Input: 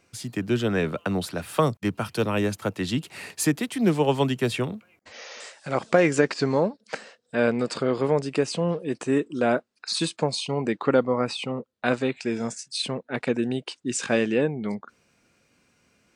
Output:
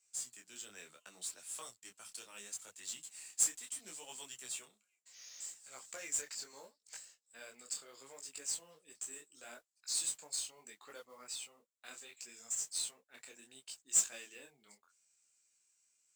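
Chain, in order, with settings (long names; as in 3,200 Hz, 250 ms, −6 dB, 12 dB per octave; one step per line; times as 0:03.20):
resonant band-pass 7,600 Hz, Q 5.7
noise that follows the level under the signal 16 dB
micro pitch shift up and down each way 25 cents
level +8.5 dB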